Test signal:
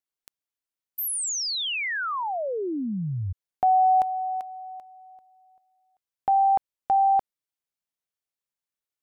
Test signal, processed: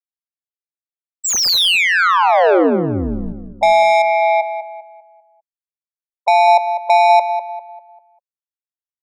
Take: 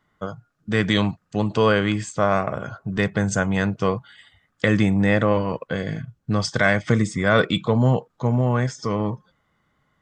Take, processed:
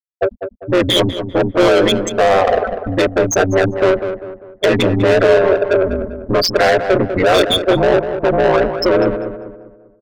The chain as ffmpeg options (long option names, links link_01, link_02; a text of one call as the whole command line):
ffmpeg -i in.wav -filter_complex "[0:a]aresample=16000,aresample=44100,highshelf=frequency=6100:gain=11.5,afftfilt=real='re*gte(hypot(re,im),0.178)':imag='im*gte(hypot(re,im),0.178)':win_size=1024:overlap=0.75,acrossover=split=160[link_01][link_02];[link_01]acompressor=threshold=-32dB:ratio=5:attack=0.44:release=146:knee=2.83:detection=peak[link_03];[link_03][link_02]amix=inputs=2:normalize=0,equalizer=frequency=125:width_type=o:width=1:gain=-4,equalizer=frequency=250:width_type=o:width=1:gain=-11,equalizer=frequency=500:width_type=o:width=1:gain=7,equalizer=frequency=1000:width_type=o:width=1:gain=-6,equalizer=frequency=2000:width_type=o:width=1:gain=-12,equalizer=frequency=4000:width_type=o:width=1:gain=8,asplit=2[link_04][link_05];[link_05]acompressor=threshold=-32dB:ratio=12:attack=45:release=137:knee=6:detection=peak,volume=-1.5dB[link_06];[link_04][link_06]amix=inputs=2:normalize=0,asplit=2[link_07][link_08];[link_08]highpass=frequency=720:poles=1,volume=29dB,asoftclip=type=tanh:threshold=-5.5dB[link_09];[link_07][link_09]amix=inputs=2:normalize=0,lowpass=frequency=3100:poles=1,volume=-6dB,asplit=2[link_10][link_11];[link_11]adelay=198,lowpass=frequency=1800:poles=1,volume=-8.5dB,asplit=2[link_12][link_13];[link_13]adelay=198,lowpass=frequency=1800:poles=1,volume=0.42,asplit=2[link_14][link_15];[link_15]adelay=198,lowpass=frequency=1800:poles=1,volume=0.42,asplit=2[link_16][link_17];[link_17]adelay=198,lowpass=frequency=1800:poles=1,volume=0.42,asplit=2[link_18][link_19];[link_19]adelay=198,lowpass=frequency=1800:poles=1,volume=0.42[link_20];[link_12][link_14][link_16][link_18][link_20]amix=inputs=5:normalize=0[link_21];[link_10][link_21]amix=inputs=2:normalize=0,aeval=exprs='val(0)*sin(2*PI*90*n/s)':channel_layout=same,volume=3.5dB" out.wav